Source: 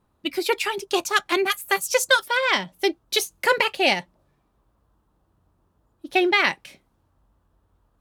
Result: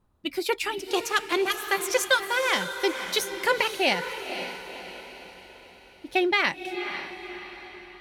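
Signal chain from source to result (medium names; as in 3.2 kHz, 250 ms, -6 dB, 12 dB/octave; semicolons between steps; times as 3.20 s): bass shelf 86 Hz +9 dB; on a send: echo that smears into a reverb 517 ms, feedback 48%, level -9 dB; on the sum: trim -4 dB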